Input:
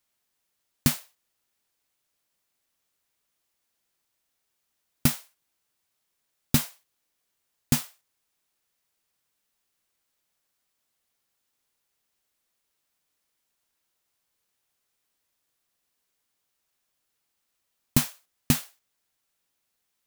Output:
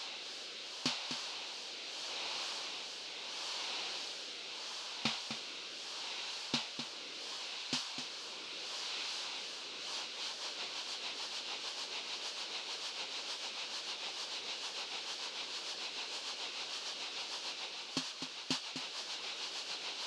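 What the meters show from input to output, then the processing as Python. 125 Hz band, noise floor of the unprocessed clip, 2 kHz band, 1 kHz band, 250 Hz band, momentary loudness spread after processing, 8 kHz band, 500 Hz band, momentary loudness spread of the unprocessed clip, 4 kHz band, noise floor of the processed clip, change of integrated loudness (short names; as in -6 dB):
-24.5 dB, -79 dBFS, +1.5 dB, +1.5 dB, -15.0 dB, 5 LU, -7.0 dB, -0.5 dB, 11 LU, +6.0 dB, -46 dBFS, -12.5 dB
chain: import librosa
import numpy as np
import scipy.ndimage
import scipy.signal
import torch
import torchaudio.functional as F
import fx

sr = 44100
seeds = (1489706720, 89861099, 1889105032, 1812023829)

y = x + 0.5 * 10.0 ** (-28.0 / 20.0) * np.sign(x)
y = fx.notch(y, sr, hz=660.0, q=12.0)
y = fx.rider(y, sr, range_db=4, speed_s=0.5)
y = fx.rotary_switch(y, sr, hz=0.75, then_hz=6.7, switch_at_s=9.66)
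y = fx.cabinet(y, sr, low_hz=420.0, low_slope=12, high_hz=5400.0, hz=(940.0, 1300.0, 1900.0, 2900.0, 4200.0), db=(3, -3, -9, 4, 5))
y = fx.wow_flutter(y, sr, seeds[0], rate_hz=2.1, depth_cents=130.0)
y = y + 10.0 ** (-8.0 / 20.0) * np.pad(y, (int(253 * sr / 1000.0), 0))[:len(y)]
y = y * 10.0 ** (-3.0 / 20.0)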